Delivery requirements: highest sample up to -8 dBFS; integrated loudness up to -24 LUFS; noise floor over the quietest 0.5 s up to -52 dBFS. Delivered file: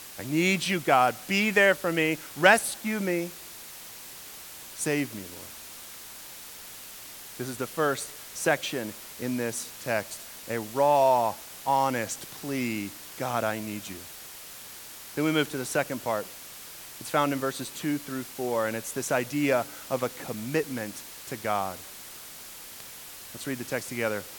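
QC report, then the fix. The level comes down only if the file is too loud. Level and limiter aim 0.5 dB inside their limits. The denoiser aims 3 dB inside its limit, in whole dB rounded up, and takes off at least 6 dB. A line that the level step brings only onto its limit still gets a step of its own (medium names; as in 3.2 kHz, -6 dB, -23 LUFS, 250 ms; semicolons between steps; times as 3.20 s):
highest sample -4.0 dBFS: fail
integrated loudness -27.5 LUFS: pass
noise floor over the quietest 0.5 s -44 dBFS: fail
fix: noise reduction 11 dB, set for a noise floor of -44 dBFS; peak limiter -8.5 dBFS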